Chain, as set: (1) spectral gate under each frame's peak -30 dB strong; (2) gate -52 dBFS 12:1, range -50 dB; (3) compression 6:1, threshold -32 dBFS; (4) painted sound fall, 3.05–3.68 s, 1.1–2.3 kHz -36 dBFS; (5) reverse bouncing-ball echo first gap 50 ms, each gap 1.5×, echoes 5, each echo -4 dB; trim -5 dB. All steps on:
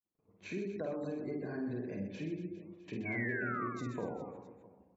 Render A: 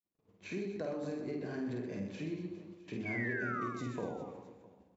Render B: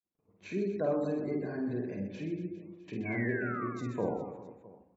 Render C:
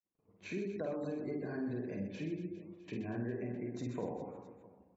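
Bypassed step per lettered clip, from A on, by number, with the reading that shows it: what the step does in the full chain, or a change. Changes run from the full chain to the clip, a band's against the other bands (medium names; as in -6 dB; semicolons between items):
1, 4 kHz band +3.0 dB; 3, mean gain reduction 3.5 dB; 4, 2 kHz band -10.0 dB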